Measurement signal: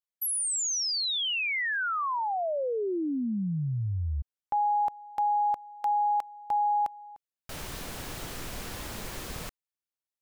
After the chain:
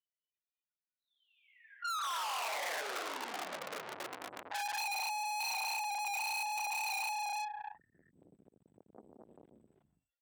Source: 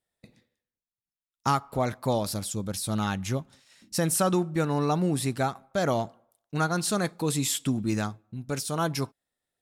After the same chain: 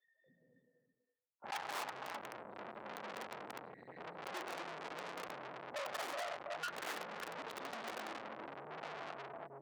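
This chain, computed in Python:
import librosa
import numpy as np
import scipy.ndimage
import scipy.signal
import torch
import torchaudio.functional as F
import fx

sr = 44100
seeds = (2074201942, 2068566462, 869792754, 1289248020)

y = fx.hpss_only(x, sr, part='harmonic')
y = fx.rider(y, sr, range_db=4, speed_s=2.0)
y = fx.spec_topn(y, sr, count=2)
y = fx.lpc_vocoder(y, sr, seeds[0], excitation='whisper', order=8)
y = np.clip(y, -10.0 ** (-6.5 / 20.0), 10.0 ** (-6.5 / 20.0))
y = fx.notch(y, sr, hz=1200.0, q=12.0)
y = y + 10.0 ** (-9.0 / 20.0) * np.pad(y, (int(328 * sr / 1000.0), 0))[:len(y)]
y = fx.rev_gated(y, sr, seeds[1], gate_ms=280, shape='rising', drr_db=-2.5)
y = (np.mod(10.0 ** (19.0 / 20.0) * y + 1.0, 2.0) - 1.0) / 10.0 ** (19.0 / 20.0)
y = fx.tube_stage(y, sr, drive_db=47.0, bias=0.3)
y = scipy.signal.sosfilt(scipy.signal.butter(2, 720.0, 'highpass', fs=sr, output='sos'), y)
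y = fx.band_squash(y, sr, depth_pct=40)
y = y * librosa.db_to_amplitude(11.5)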